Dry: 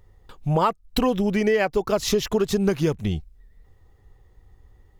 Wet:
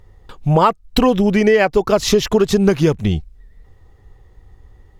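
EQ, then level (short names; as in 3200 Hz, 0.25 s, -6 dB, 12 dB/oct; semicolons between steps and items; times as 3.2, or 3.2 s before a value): high shelf 11000 Hz -8.5 dB; +7.5 dB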